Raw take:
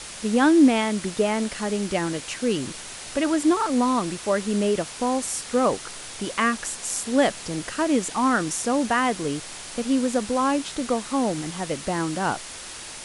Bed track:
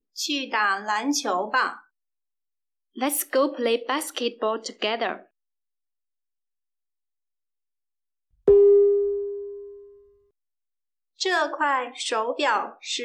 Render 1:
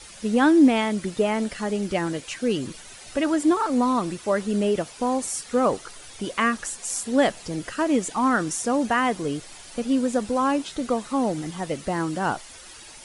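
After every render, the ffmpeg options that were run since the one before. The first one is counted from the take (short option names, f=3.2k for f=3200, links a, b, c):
-af "afftdn=nr=10:nf=-38"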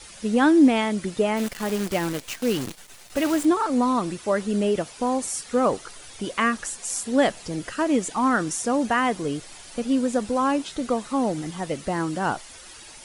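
-filter_complex "[0:a]asplit=3[a][b][c];[a]afade=t=out:st=1.36:d=0.02[d];[b]acrusher=bits=6:dc=4:mix=0:aa=0.000001,afade=t=in:st=1.36:d=0.02,afade=t=out:st=3.44:d=0.02[e];[c]afade=t=in:st=3.44:d=0.02[f];[d][e][f]amix=inputs=3:normalize=0"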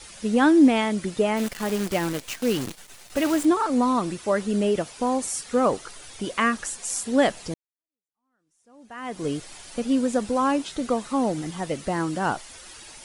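-filter_complex "[0:a]asplit=2[a][b];[a]atrim=end=7.54,asetpts=PTS-STARTPTS,afade=t=out:st=7.536:d=0.004:c=hsin[c];[b]atrim=start=7.54,asetpts=PTS-STARTPTS,afade=t=in:d=1.71:c=exp[d];[c][d]concat=n=2:v=0:a=1"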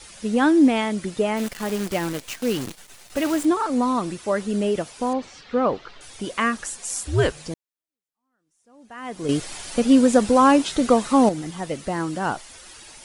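-filter_complex "[0:a]asettb=1/sr,asplit=3[a][b][c];[a]atrim=end=5.134[d];[b]atrim=start=5.13:end=6.01,asetpts=PTS-STARTPTS,afade=t=in:d=0.004:c=qsin,afade=t=out:st=0.876:d=0.004:c=qsin,lowpass=f=4.2k:w=0.5412,lowpass=f=4.2k:w=1.3066[e];[c]atrim=start=6.006[f];[d][e]acrossfade=d=0.004:c1=hsin:c2=qsin[g];[g][f]acrossfade=d=0.004:c1=qsin:c2=hsin,asettb=1/sr,asplit=3[h][i][j];[h]atrim=end=7.064[k];[i]atrim=start=7.06:end=7.47,asetpts=PTS-STARTPTS,afade=t=in:d=0.004:c=qsin,afade=t=out:st=0.406:d=0.004:c=qsin,afreqshift=-160[l];[j]atrim=start=7.466[m];[k][l]acrossfade=d=0.004:c1=hsin:c2=qsin[n];[n][m]acrossfade=d=0.004:c1=qsin:c2=hsin,asplit=3[o][p][q];[o]atrim=end=9.292[r];[p]atrim=start=9.288:end=11.292,asetpts=PTS-STARTPTS,volume=7.5dB[s];[q]atrim=start=11.288[t];[r][s]acrossfade=d=0.004:c1=hsin:c2=hsin[u];[u][t]acrossfade=d=0.004:c1=hsin:c2=hsin"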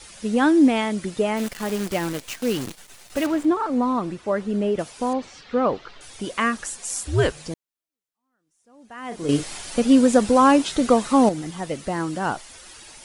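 -filter_complex "[0:a]asettb=1/sr,asplit=3[a][b][c];[a]atrim=end=3.264[d];[b]atrim=start=3.26:end=4.79,asetpts=PTS-STARTPTS,afade=t=in:d=0.004:c=qsin,afade=t=out:st=1.526:d=0.004:c=qsin,lowpass=f=2k:p=1[e];[c]atrim=start=4.786[f];[d][e]acrossfade=d=0.004:c1=hsin:c2=qsin[g];[g][f]acrossfade=d=0.004:c1=qsin:c2=hsin,asettb=1/sr,asplit=3[h][i][j];[h]atrim=end=9.084[k];[i]atrim=start=9.08:end=9.59,asetpts=PTS-STARTPTS,afade=t=in:d=0.004:c=qsin,afade=t=out:st=0.506:d=0.004:c=qsin,asplit=2[l][m];[m]adelay=35,volume=-7dB[n];[l][n]amix=inputs=2:normalize=0,atrim=end_sample=22491[o];[j]atrim=start=9.586[p];[k][o]acrossfade=d=0.004:c1=hsin:c2=qsin[q];[q][p]acrossfade=d=0.004:c1=qsin:c2=hsin"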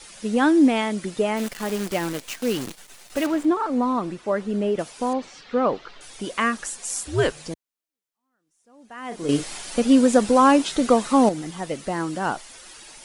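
-af "equalizer=f=71:w=1.2:g=-11"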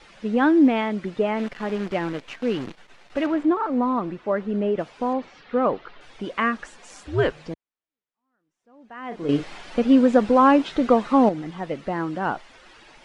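-af "lowpass=2.7k"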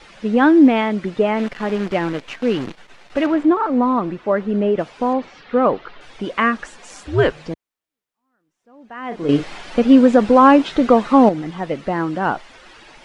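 -af "volume=5.5dB,alimiter=limit=-1dB:level=0:latency=1"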